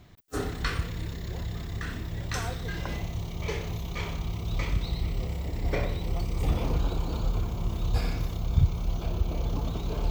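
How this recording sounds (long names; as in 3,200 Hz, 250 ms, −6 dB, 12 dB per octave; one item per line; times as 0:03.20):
background noise floor −36 dBFS
spectral slope −6.0 dB per octave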